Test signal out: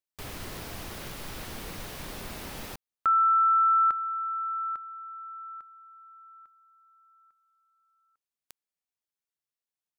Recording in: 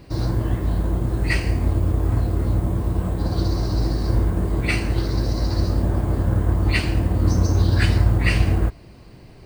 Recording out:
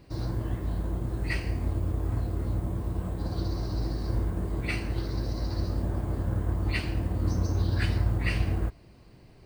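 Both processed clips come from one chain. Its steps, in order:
dynamic equaliser 7,400 Hz, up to −4 dB, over −47 dBFS, Q 1.8
level −9 dB

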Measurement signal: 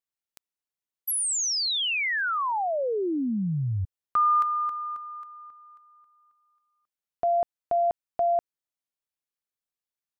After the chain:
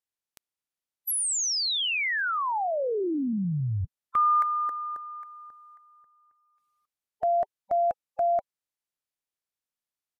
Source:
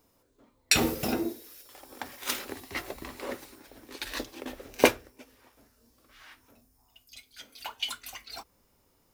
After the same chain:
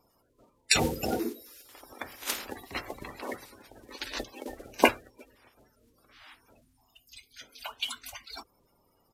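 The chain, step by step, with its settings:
spectral magnitudes quantised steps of 30 dB
downsampling to 32,000 Hz

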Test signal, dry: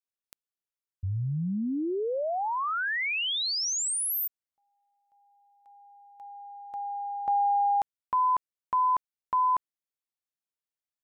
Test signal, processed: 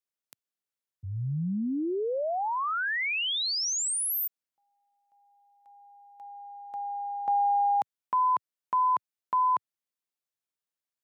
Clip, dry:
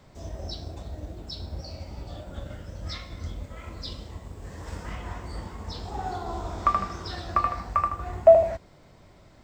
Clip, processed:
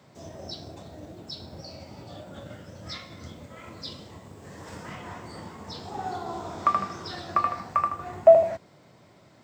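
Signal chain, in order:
high-pass filter 110 Hz 24 dB per octave

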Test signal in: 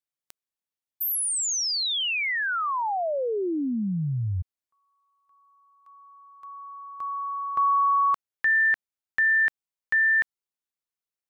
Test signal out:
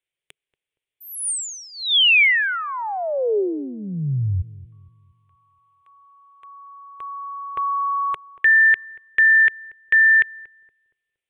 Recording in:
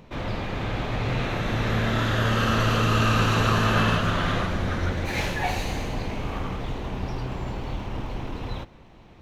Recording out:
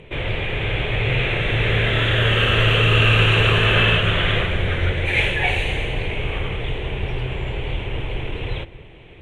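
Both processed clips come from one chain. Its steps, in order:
drawn EQ curve 140 Hz 0 dB, 230 Hz −10 dB, 410 Hz +5 dB, 730 Hz −5 dB, 1,200 Hz −8 dB, 2,300 Hz +7 dB, 3,400 Hz +5 dB, 4,900 Hz −23 dB, 9,100 Hz −2 dB, 14,000 Hz −24 dB
on a send: feedback echo with a low-pass in the loop 234 ms, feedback 40%, low-pass 930 Hz, level −18.5 dB
on the sum: dynamic equaliser 300 Hz, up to −4 dB, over −38 dBFS, Q 0.86
level +6.5 dB

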